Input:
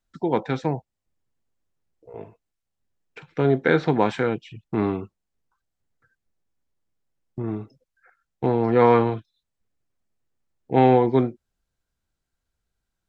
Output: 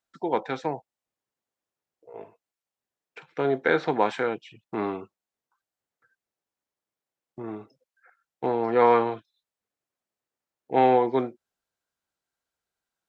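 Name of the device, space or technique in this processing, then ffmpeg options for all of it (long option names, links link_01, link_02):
filter by subtraction: -filter_complex "[0:a]asplit=2[link_01][link_02];[link_02]lowpass=700,volume=-1[link_03];[link_01][link_03]amix=inputs=2:normalize=0,volume=-2.5dB"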